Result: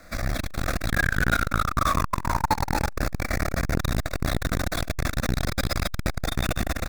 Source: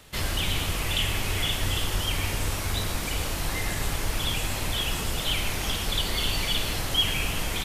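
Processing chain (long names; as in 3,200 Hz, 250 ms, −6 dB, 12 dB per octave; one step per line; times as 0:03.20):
running median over 5 samples
high-shelf EQ 3,200 Hz −3 dB
mains-hum notches 50/100/150/200/250/300/350 Hz
brickwall limiter −21 dBFS, peak gain reduction 6.5 dB
automatic gain control gain up to 4.5 dB
speed change +11%
phaser with its sweep stopped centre 610 Hz, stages 8
sound drawn into the spectrogram fall, 0:00.91–0:02.68, 810–1,700 Hz −30 dBFS
loudspeakers that aren't time-aligned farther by 11 metres −6 dB, 43 metres −5 dB, 81 metres −10 dB, 94 metres −7 dB
saturating transformer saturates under 380 Hz
level +8 dB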